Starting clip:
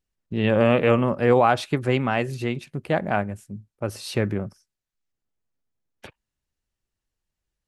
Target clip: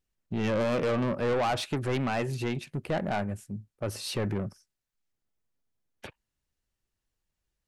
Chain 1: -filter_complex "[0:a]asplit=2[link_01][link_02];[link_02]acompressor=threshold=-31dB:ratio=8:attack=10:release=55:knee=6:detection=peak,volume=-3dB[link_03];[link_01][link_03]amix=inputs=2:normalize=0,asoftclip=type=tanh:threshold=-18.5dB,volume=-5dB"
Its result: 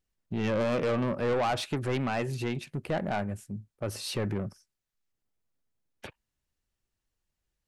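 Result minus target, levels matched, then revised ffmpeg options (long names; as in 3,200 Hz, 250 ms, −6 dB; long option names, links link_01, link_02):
downward compressor: peak gain reduction +7.5 dB
-filter_complex "[0:a]asplit=2[link_01][link_02];[link_02]acompressor=threshold=-22.5dB:ratio=8:attack=10:release=55:knee=6:detection=peak,volume=-3dB[link_03];[link_01][link_03]amix=inputs=2:normalize=0,asoftclip=type=tanh:threshold=-18.5dB,volume=-5dB"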